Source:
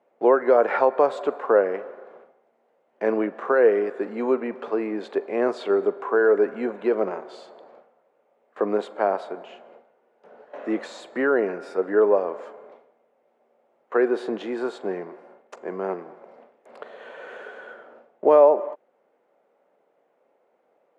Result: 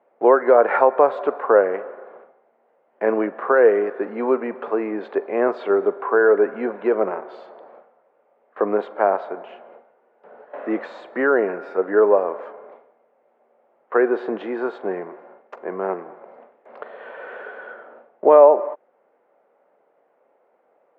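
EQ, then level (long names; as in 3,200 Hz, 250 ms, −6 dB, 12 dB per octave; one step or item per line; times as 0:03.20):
low-pass filter 1,900 Hz 12 dB per octave
low-shelf EQ 420 Hz −7.5 dB
+6.5 dB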